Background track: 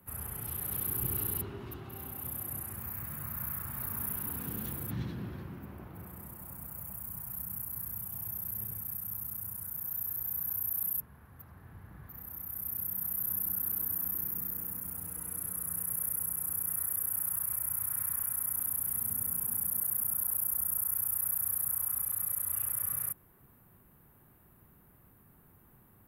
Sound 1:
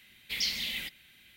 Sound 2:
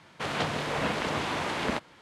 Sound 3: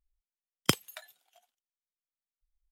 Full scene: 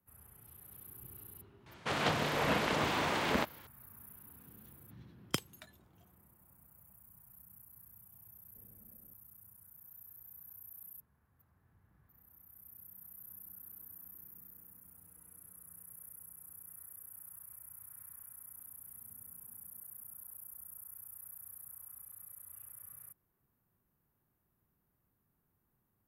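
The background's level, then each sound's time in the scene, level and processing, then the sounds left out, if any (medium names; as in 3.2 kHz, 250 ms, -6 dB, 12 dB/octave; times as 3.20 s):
background track -18.5 dB
1.66 s: add 2 -2 dB
4.65 s: add 3 -9 dB
8.25 s: add 1 -15.5 dB + steep low-pass 640 Hz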